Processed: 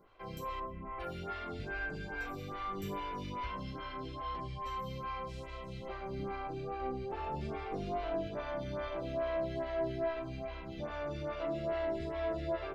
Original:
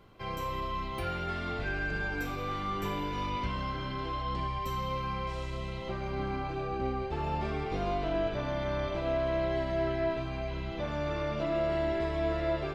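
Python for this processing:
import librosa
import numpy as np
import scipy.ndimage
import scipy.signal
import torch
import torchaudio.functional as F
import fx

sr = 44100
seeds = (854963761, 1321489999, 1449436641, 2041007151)

y = fx.cheby2_lowpass(x, sr, hz=4100.0, order=4, stop_db=40, at=(0.59, 0.99), fade=0.02)
y = fx.rev_schroeder(y, sr, rt60_s=0.54, comb_ms=38, drr_db=14.5)
y = fx.stagger_phaser(y, sr, hz=2.4)
y = y * 10.0 ** (-3.0 / 20.0)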